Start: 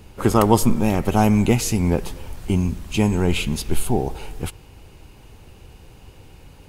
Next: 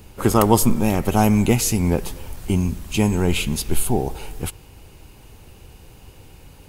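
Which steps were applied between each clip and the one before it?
high-shelf EQ 8,400 Hz +8.5 dB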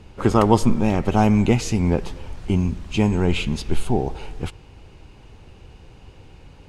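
high-frequency loss of the air 110 metres

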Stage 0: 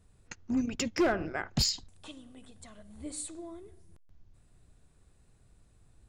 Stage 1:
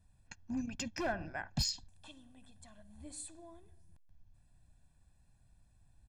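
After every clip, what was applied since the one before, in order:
comb filter 1.2 ms, depth 71%
level −8.5 dB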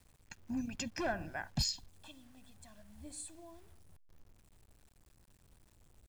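bit reduction 11 bits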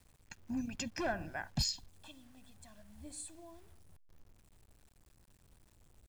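no processing that can be heard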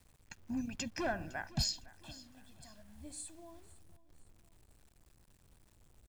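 repeating echo 508 ms, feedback 39%, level −19.5 dB

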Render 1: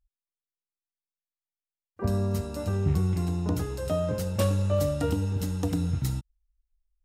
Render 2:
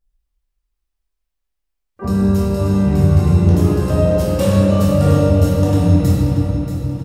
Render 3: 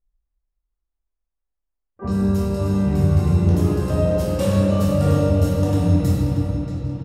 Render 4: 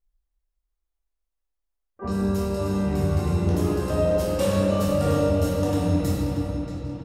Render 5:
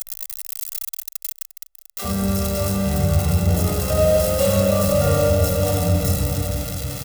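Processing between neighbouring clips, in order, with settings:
on a send: repeating echo 632 ms, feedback 40%, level −10.5 dB; on the sum: rectangular room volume 160 cubic metres, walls hard, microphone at 1.2 metres; level +2 dB
low-pass that shuts in the quiet parts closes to 1,300 Hz, open at −12.5 dBFS; level −4.5 dB
parametric band 120 Hz −9 dB 1.6 octaves
spike at every zero crossing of −18.5 dBFS; comb filter 1.5 ms, depth 73%; level +1.5 dB

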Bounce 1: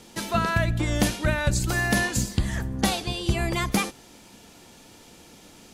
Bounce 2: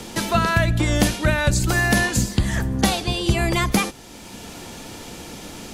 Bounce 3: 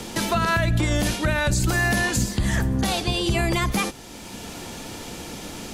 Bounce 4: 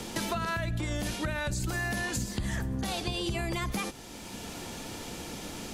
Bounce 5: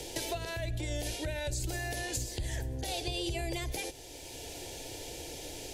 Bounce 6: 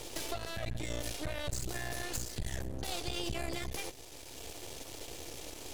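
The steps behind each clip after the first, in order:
multiband upward and downward compressor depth 40%; level +5 dB
brickwall limiter −13.5 dBFS, peak gain reduction 11 dB; level +1 dB
downward compressor, threshold −24 dBFS, peak gain reduction 7 dB; level −4.5 dB
phaser with its sweep stopped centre 500 Hz, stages 4
half-wave rectification; level +1.5 dB

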